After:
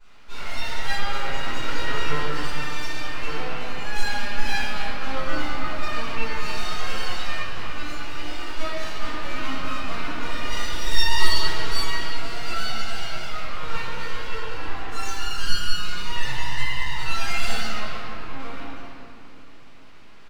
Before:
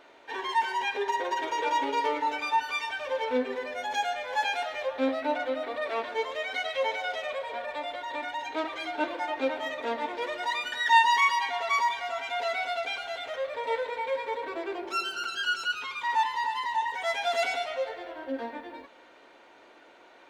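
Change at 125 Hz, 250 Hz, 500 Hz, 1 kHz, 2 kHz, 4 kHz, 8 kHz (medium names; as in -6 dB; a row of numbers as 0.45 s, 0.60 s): no reading, +1.5 dB, -5.5 dB, -4.5 dB, +1.0 dB, +6.0 dB, +8.5 dB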